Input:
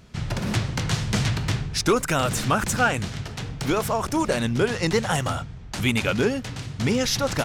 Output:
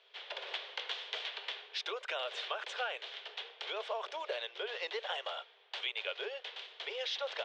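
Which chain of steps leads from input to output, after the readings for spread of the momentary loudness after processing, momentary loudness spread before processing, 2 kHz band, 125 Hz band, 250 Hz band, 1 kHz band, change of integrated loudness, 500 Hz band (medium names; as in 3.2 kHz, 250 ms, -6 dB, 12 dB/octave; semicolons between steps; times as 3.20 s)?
6 LU, 9 LU, -13.0 dB, under -40 dB, -39.0 dB, -15.5 dB, -15.0 dB, -15.5 dB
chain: four-pole ladder low-pass 3.7 kHz, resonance 65%; band-stop 1.3 kHz, Q 16; dynamic bell 610 Hz, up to +5 dB, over -49 dBFS, Q 4; compression, threshold -33 dBFS, peak gain reduction 9.5 dB; steep high-pass 410 Hz 72 dB/octave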